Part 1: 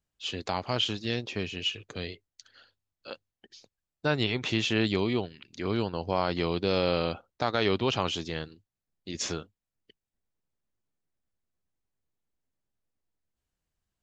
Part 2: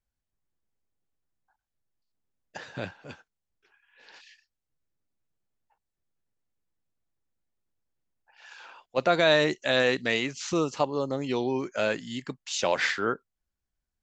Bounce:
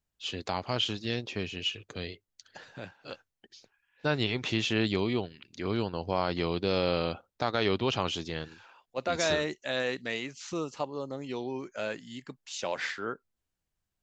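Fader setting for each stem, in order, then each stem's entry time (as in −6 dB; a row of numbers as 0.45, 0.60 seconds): −1.5, −7.5 decibels; 0.00, 0.00 seconds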